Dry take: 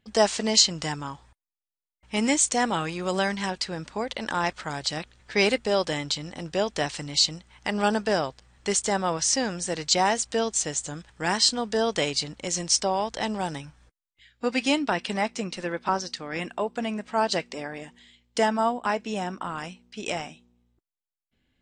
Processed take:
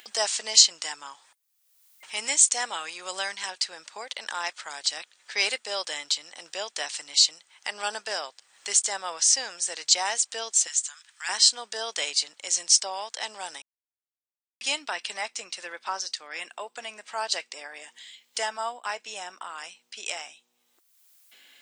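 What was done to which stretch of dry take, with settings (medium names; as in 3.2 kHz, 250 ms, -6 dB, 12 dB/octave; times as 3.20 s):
10.67–11.29 s: high-pass 1.1 kHz 24 dB/octave
13.62–14.61 s: mute
whole clip: high-pass 520 Hz 12 dB/octave; tilt EQ +3.5 dB/octave; upward compressor, threshold -30 dBFS; trim -5.5 dB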